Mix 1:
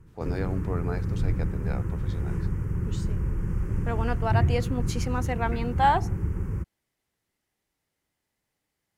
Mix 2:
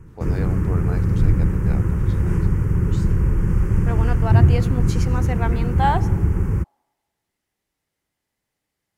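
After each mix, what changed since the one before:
background +9.5 dB; reverb: on, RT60 1.4 s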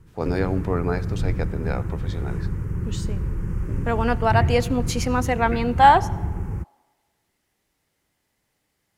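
speech +7.0 dB; background -8.0 dB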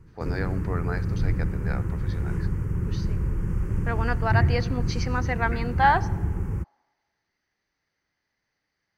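speech: add rippled Chebyshev low-pass 6.3 kHz, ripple 9 dB

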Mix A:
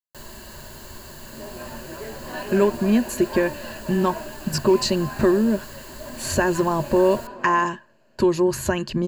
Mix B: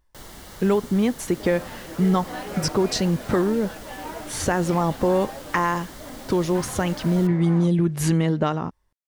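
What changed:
speech: entry -1.90 s; master: remove rippled EQ curve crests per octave 1.4, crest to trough 11 dB

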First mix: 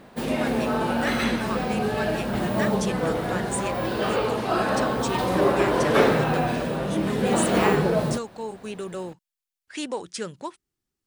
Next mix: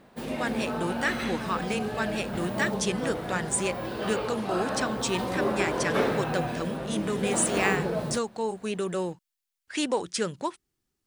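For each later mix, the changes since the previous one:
speech +3.5 dB; background -7.0 dB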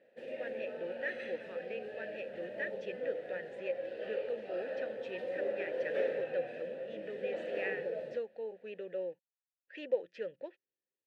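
speech: add distance through air 220 m; master: add vowel filter e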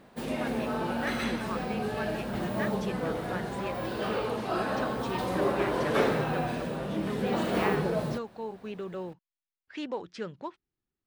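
speech -7.0 dB; master: remove vowel filter e

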